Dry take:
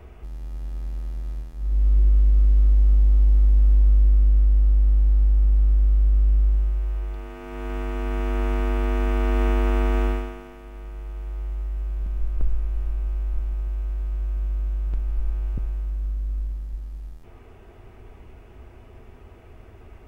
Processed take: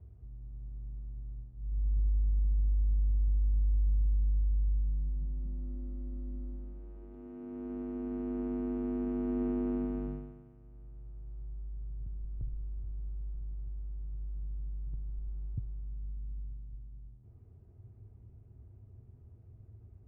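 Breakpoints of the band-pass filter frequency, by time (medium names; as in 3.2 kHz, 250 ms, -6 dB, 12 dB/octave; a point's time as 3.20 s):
band-pass filter, Q 2.6
4.72 s 100 Hz
5.80 s 250 Hz
9.71 s 250 Hz
10.59 s 110 Hz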